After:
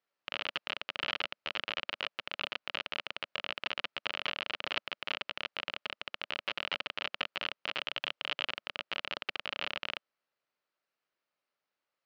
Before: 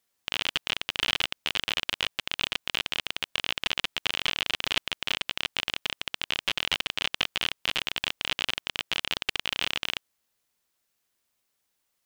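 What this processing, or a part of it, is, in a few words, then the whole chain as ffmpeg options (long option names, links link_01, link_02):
kitchen radio: -filter_complex "[0:a]asettb=1/sr,asplit=3[link_01][link_02][link_03];[link_01]atrim=end=7.814[link_04];[link_02]atrim=start=7.81:end=8.47,asetpts=PTS-STARTPTS,afade=type=in:duration=0.004:curve=qsin,afade=type=out:start_time=0.656:duration=0.004:curve=qsin,equalizer=frequency=160:width_type=o:width=0.33:gain=-12,equalizer=frequency=3150:width_type=o:width=0.33:gain=4,equalizer=frequency=8000:width_type=o:width=0.33:gain=7[link_05];[link_03]atrim=start=8.466[link_06];[link_04][link_05]acrossfade=duration=0.004:curve1=hsin:curve2=qsin[link_07];[link_07][link_06]acrossfade=duration=0.004:curve1=qsin:curve2=hsin,highpass=170,equalizer=frequency=220:width_type=q:width=4:gain=-4,equalizer=frequency=580:width_type=q:width=4:gain=6,equalizer=frequency=1300:width_type=q:width=4:gain=5,equalizer=frequency=3500:width_type=q:width=4:gain=-6,lowpass=frequency=4300:width=0.5412,lowpass=frequency=4300:width=1.3066,volume=-6dB"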